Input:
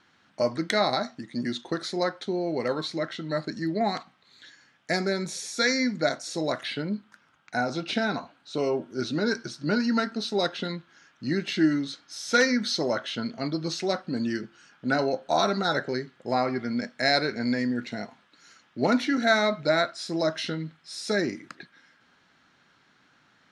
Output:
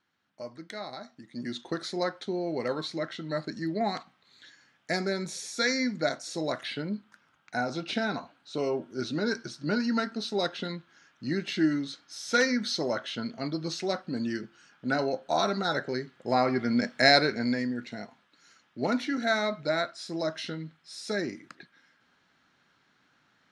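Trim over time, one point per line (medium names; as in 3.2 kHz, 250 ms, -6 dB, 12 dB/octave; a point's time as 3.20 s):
0.94 s -15 dB
1.62 s -3 dB
15.84 s -3 dB
17.00 s +4.5 dB
17.77 s -5 dB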